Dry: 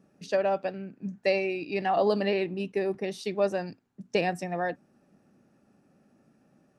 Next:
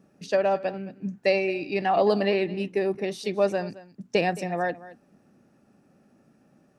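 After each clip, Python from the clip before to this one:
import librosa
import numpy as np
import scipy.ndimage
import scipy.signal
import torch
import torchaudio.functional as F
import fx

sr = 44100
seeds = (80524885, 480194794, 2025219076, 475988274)

y = x + 10.0 ** (-18.0 / 20.0) * np.pad(x, (int(219 * sr / 1000.0), 0))[:len(x)]
y = y * librosa.db_to_amplitude(3.0)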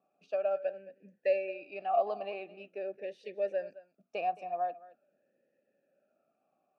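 y = fx.vowel_sweep(x, sr, vowels='a-e', hz=0.45)
y = y * librosa.db_to_amplitude(-2.0)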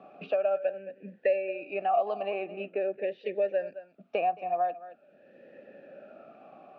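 y = scipy.signal.sosfilt(scipy.signal.butter(4, 3300.0, 'lowpass', fs=sr, output='sos'), x)
y = fx.band_squash(y, sr, depth_pct=70)
y = y * librosa.db_to_amplitude(5.0)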